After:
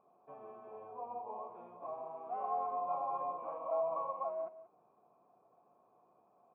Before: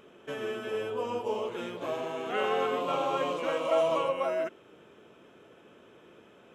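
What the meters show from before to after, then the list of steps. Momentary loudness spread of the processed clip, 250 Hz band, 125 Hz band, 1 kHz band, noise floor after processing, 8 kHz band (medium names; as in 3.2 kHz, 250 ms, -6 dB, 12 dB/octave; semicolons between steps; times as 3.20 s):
15 LU, -20.5 dB, under -15 dB, -5.0 dB, -71 dBFS, no reading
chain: cascade formant filter a; peaking EQ 160 Hz +8.5 dB 1.6 oct; delay 183 ms -15 dB; trim +1 dB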